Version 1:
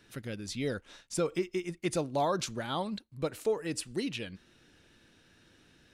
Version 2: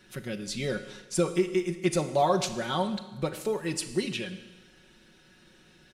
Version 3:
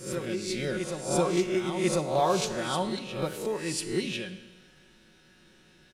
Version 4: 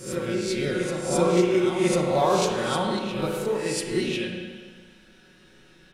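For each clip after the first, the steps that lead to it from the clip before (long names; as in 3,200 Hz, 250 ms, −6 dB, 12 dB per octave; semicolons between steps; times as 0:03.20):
comb filter 5.4 ms, depth 69%; four-comb reverb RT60 1.2 s, combs from 26 ms, DRR 10 dB; level +2.5 dB
peak hold with a rise ahead of every peak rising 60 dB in 0.51 s; backwards echo 1,045 ms −7.5 dB; level −2.5 dB
spring reverb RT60 1.5 s, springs 34/56 ms, chirp 70 ms, DRR 1 dB; level +2 dB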